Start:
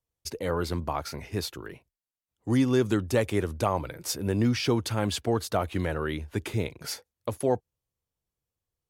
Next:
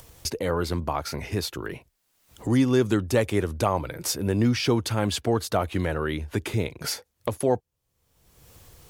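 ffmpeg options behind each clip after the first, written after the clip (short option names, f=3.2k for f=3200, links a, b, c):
-af "acompressor=mode=upward:threshold=-26dB:ratio=2.5,volume=2.5dB"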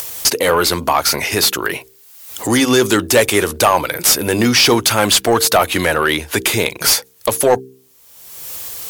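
-filter_complex "[0:a]aemphasis=mode=production:type=75fm,asplit=2[a][b];[b]highpass=f=720:p=1,volume=21dB,asoftclip=type=tanh:threshold=-2.5dB[c];[a][c]amix=inputs=2:normalize=0,lowpass=f=4.7k:p=1,volume=-6dB,bandreject=f=65.08:t=h:w=4,bandreject=f=130.16:t=h:w=4,bandreject=f=195.24:t=h:w=4,bandreject=f=260.32:t=h:w=4,bandreject=f=325.4:t=h:w=4,bandreject=f=390.48:t=h:w=4,bandreject=f=455.56:t=h:w=4,volume=3dB"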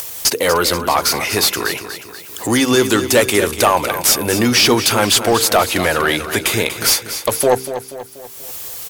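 -af "aecho=1:1:241|482|723|964|1205:0.282|0.141|0.0705|0.0352|0.0176,volume=-1dB"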